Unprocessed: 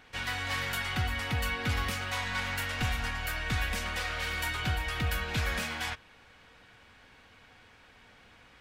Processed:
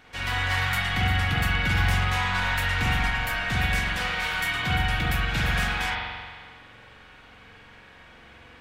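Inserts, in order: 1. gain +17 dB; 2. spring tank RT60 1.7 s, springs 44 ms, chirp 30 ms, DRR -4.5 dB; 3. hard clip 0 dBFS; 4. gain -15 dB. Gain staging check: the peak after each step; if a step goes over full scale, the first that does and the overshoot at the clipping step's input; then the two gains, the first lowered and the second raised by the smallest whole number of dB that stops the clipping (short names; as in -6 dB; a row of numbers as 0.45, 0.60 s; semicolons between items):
-1.5, +4.5, 0.0, -15.0 dBFS; step 2, 4.5 dB; step 1 +12 dB, step 4 -10 dB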